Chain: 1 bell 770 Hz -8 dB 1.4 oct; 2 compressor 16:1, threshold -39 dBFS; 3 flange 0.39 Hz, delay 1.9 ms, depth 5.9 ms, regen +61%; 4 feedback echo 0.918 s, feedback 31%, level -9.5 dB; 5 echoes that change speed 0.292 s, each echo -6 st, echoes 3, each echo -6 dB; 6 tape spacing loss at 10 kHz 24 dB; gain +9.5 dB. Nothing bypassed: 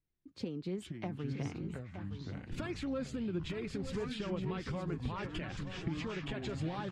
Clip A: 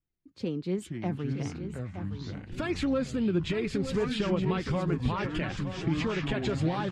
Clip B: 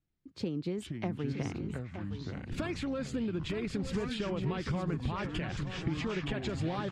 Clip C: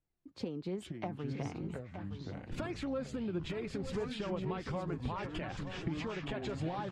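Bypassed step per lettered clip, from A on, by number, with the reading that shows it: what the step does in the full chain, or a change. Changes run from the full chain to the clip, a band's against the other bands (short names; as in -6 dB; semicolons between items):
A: 2, mean gain reduction 7.0 dB; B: 3, loudness change +4.0 LU; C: 1, 1 kHz band +3.5 dB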